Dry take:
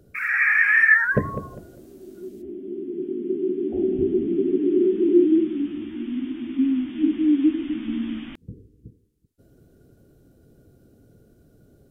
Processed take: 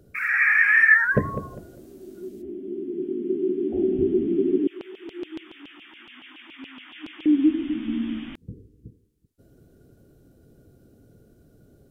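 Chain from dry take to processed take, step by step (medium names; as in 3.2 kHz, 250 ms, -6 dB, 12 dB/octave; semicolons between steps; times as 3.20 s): 4.67–7.26 s: LFO high-pass saw down 7.1 Hz 750–3100 Hz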